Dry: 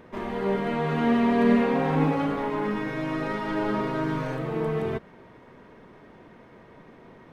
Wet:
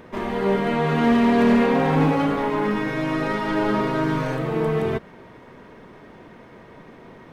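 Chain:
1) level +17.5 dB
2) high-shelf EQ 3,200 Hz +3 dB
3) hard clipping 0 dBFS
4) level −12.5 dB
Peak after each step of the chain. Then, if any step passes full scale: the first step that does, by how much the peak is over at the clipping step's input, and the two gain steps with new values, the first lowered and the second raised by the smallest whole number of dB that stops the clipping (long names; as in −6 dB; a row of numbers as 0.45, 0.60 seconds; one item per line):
+8.0, +8.0, 0.0, −12.5 dBFS
step 1, 8.0 dB
step 1 +9.5 dB, step 4 −4.5 dB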